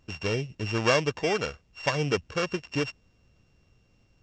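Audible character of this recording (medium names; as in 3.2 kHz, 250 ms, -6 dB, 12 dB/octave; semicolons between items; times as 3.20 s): a buzz of ramps at a fixed pitch in blocks of 16 samples; µ-law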